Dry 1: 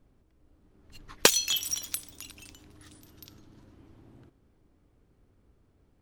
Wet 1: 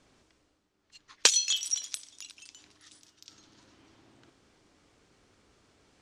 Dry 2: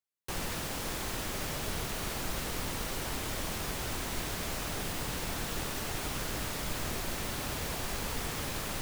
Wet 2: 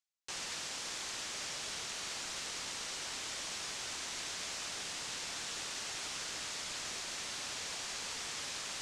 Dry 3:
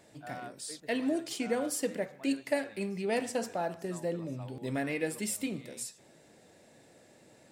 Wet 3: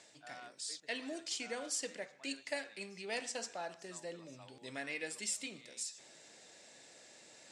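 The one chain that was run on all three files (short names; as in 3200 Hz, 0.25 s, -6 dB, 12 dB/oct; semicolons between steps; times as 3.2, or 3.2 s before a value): LPF 7200 Hz 24 dB/oct; tilt +4 dB/oct; reverse; upward compressor, threshold -42 dBFS; reverse; gain -7.5 dB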